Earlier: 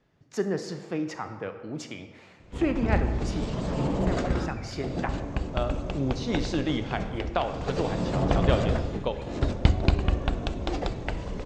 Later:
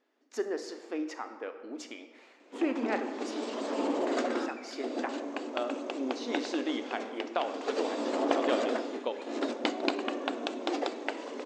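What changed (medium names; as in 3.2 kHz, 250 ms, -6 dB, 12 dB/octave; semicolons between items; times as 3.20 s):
speech -4.0 dB; master: add brick-wall FIR high-pass 230 Hz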